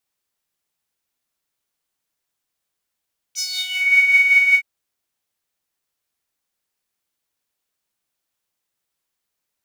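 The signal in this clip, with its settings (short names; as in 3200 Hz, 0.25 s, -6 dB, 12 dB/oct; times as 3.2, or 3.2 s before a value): synth patch with tremolo F#5, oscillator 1 saw, oscillator 2 triangle, interval +19 st, oscillator 2 level -1 dB, sub -22 dB, noise -20 dB, filter highpass, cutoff 2100 Hz, Q 8.9, filter envelope 1.5 oct, filter decay 0.52 s, filter sustain 5%, attack 41 ms, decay 0.41 s, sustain -7 dB, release 0.07 s, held 1.20 s, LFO 5.2 Hz, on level 5.5 dB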